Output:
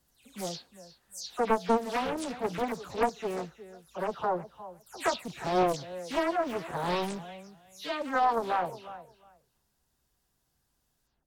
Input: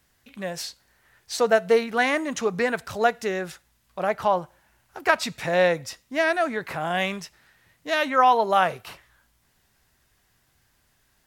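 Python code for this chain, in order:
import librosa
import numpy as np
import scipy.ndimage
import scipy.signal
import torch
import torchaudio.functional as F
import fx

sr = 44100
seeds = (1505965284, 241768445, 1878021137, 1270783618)

y = fx.spec_delay(x, sr, highs='early', ms=191)
y = fx.peak_eq(y, sr, hz=2000.0, db=-10.0, octaves=1.1)
y = fx.rider(y, sr, range_db=10, speed_s=2.0)
y = fx.echo_feedback(y, sr, ms=359, feedback_pct=17, wet_db=-15.0)
y = fx.doppler_dist(y, sr, depth_ms=0.72)
y = F.gain(torch.from_numpy(y), -5.0).numpy()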